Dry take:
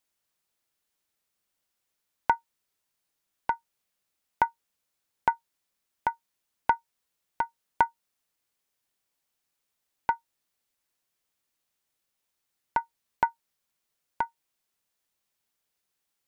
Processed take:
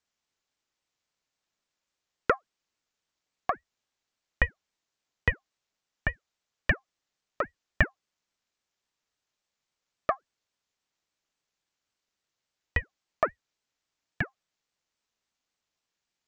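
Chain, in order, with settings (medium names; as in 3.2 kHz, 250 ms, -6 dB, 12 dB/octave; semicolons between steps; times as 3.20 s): resampled via 16 kHz; ring modulator with a swept carrier 560 Hz, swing 80%, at 3.6 Hz; trim +2.5 dB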